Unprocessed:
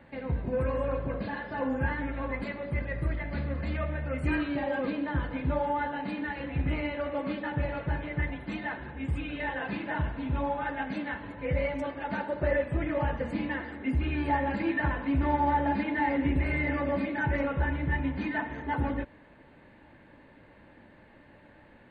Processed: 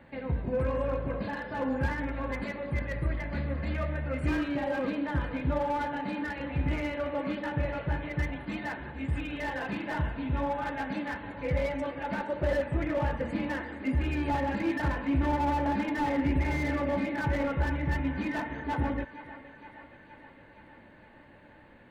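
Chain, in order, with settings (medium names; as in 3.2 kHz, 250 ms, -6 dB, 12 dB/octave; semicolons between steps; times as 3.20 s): thinning echo 468 ms, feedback 70%, high-pass 340 Hz, level -14.5 dB; slew-rate limiter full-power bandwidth 37 Hz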